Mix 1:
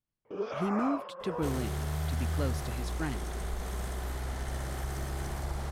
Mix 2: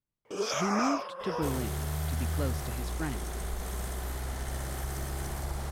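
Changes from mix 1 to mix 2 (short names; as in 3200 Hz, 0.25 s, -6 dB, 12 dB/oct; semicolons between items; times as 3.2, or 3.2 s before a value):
speech: add LPF 3600 Hz 6 dB/oct; first sound: remove tape spacing loss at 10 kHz 40 dB; master: add high shelf 8000 Hz +8.5 dB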